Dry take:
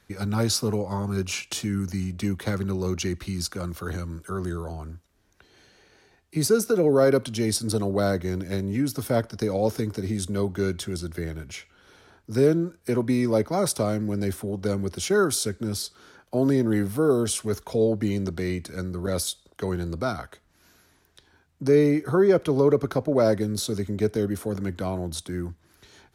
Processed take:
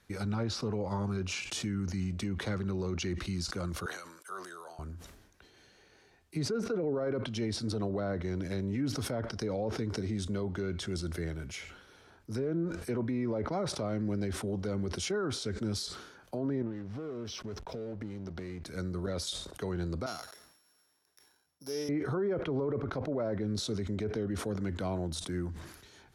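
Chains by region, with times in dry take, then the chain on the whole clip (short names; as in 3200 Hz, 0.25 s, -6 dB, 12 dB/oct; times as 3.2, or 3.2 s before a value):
3.86–4.79 HPF 800 Hz + expander -54 dBFS
16.62–18.66 brick-wall FIR low-pass 6300 Hz + compressor 10:1, threshold -31 dBFS + backlash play -42.5 dBFS
20.06–21.89 sample sorter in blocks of 8 samples + HPF 1400 Hz 6 dB/oct + bell 2700 Hz -7 dB 2.9 oct
whole clip: treble ducked by the level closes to 2200 Hz, closed at -18 dBFS; limiter -20.5 dBFS; sustainer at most 61 dB/s; gain -4.5 dB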